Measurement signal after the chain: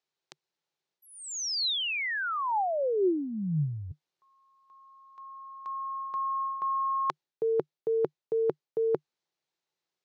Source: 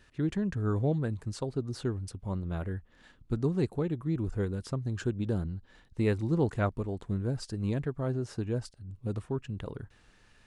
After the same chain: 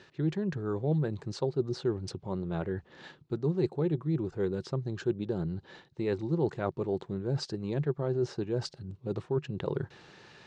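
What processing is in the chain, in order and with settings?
reversed playback
downward compressor 6 to 1, threshold −39 dBFS
reversed playback
loudspeaker in its box 140–6,400 Hz, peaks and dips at 150 Hz +9 dB, 250 Hz −5 dB, 370 Hz +9 dB, 530 Hz +3 dB, 840 Hz +5 dB, 4,000 Hz +4 dB
level +8.5 dB

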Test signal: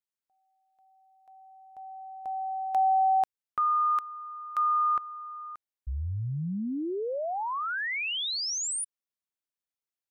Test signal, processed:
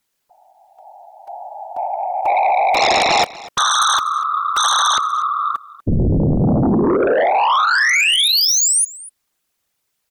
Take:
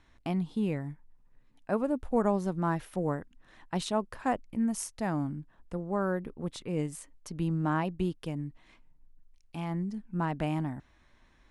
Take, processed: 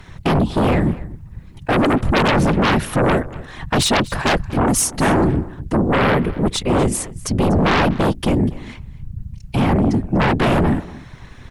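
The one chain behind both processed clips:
low-shelf EQ 110 Hz +4 dB
random phases in short frames
in parallel at −7 dB: sine wavefolder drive 18 dB, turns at −12 dBFS
on the sum: single-tap delay 244 ms −19.5 dB
level +5 dB

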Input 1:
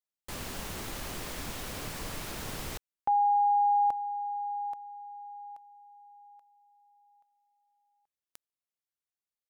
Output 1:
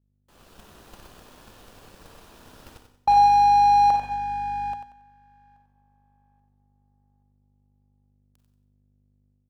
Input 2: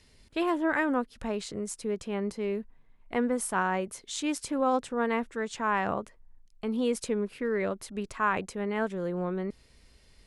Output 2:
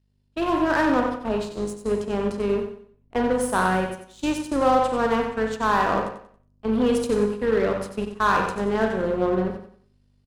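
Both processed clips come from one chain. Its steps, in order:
four-comb reverb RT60 0.73 s, combs from 32 ms, DRR 4 dB
in parallel at −3 dB: wave folding −23.5 dBFS
on the sum: bass and treble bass −4 dB, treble −7 dB
mains hum 50 Hz, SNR 15 dB
noise gate −31 dBFS, range −11 dB
parametric band 2,100 Hz −9.5 dB 0.35 octaves
power curve on the samples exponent 1.4
automatic gain control gain up to 6 dB
repeating echo 92 ms, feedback 32%, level −8.5 dB

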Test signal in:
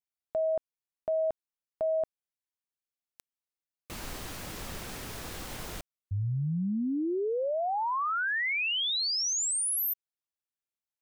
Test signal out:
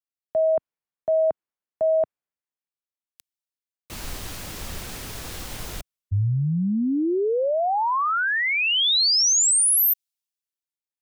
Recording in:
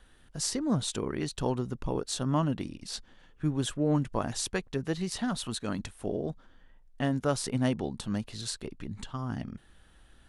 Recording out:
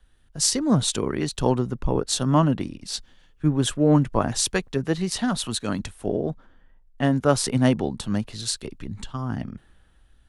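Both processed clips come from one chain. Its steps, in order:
multiband upward and downward expander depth 40%
level +7.5 dB

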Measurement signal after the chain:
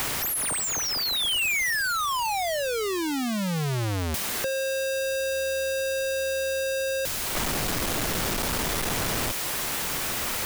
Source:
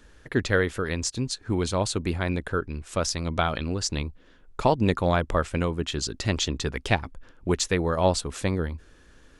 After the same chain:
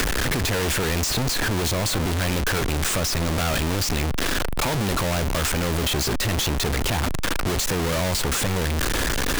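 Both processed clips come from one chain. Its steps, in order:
sign of each sample alone
multiband upward and downward compressor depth 70%
level +3.5 dB

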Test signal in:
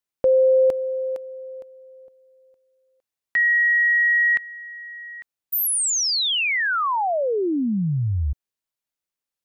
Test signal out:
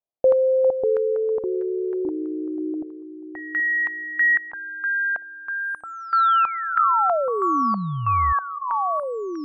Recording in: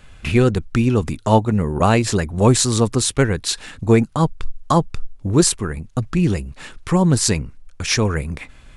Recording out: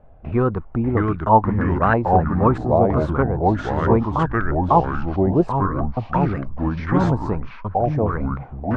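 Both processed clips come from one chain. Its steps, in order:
delay with pitch and tempo change per echo 548 ms, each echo −3 semitones, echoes 3
low-pass on a step sequencer 3.1 Hz 690–1,600 Hz
level −5 dB

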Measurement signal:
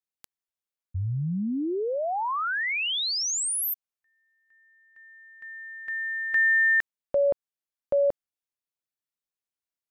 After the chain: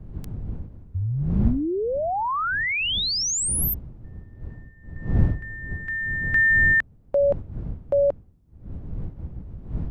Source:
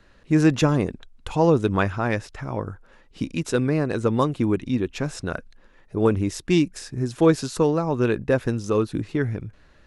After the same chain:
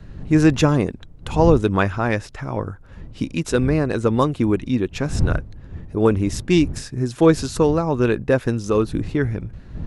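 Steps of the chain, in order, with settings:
wind on the microphone 100 Hz −33 dBFS
level +3 dB

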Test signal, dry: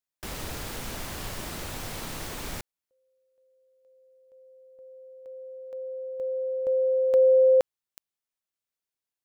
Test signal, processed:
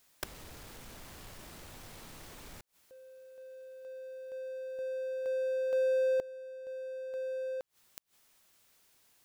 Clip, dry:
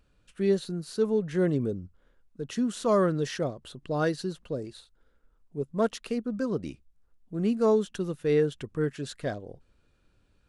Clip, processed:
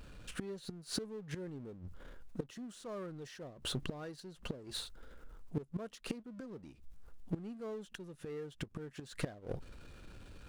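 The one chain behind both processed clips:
gate with flip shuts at −28 dBFS, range −30 dB
power curve on the samples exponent 0.7
level +2.5 dB

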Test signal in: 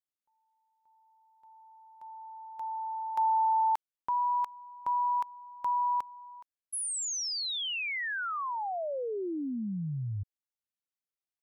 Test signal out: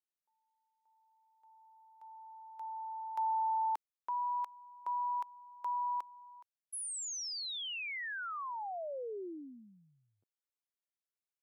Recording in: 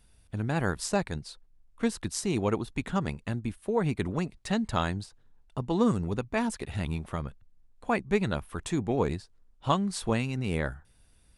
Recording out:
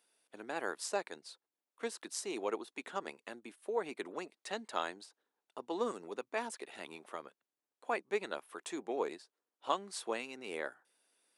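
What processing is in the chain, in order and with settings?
high-pass filter 340 Hz 24 dB per octave
level −6.5 dB

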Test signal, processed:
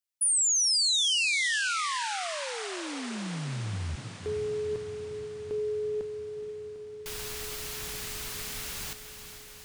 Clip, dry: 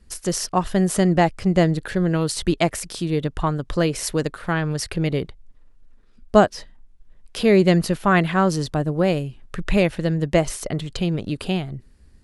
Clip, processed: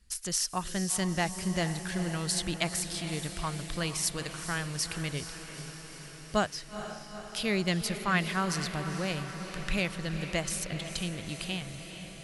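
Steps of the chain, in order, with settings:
guitar amp tone stack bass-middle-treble 5-5-5
feedback delay with all-pass diffusion 451 ms, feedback 70%, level −10 dB
level +3.5 dB

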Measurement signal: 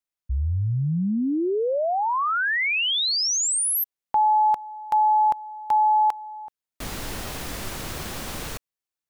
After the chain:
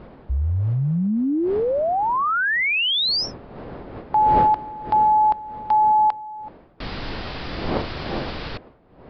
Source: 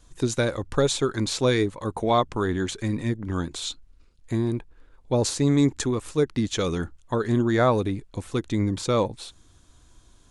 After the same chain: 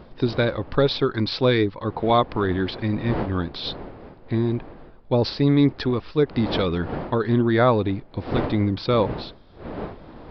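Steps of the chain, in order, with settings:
wind on the microphone 550 Hz −38 dBFS
downsampling to 11,025 Hz
level +2.5 dB

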